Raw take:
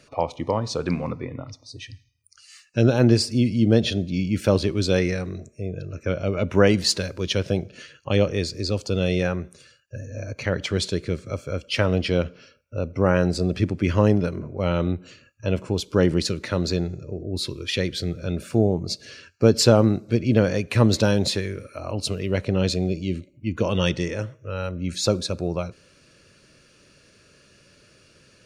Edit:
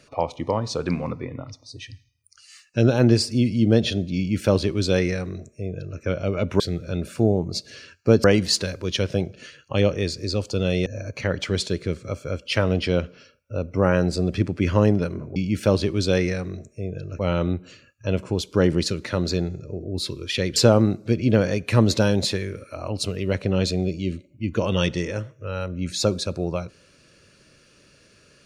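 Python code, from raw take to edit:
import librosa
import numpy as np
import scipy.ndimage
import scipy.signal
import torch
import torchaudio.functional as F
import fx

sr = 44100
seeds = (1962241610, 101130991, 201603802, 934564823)

y = fx.edit(x, sr, fx.duplicate(start_s=4.17, length_s=1.83, to_s=14.58),
    fx.cut(start_s=9.22, length_s=0.86),
    fx.move(start_s=17.95, length_s=1.64, to_s=6.6), tone=tone)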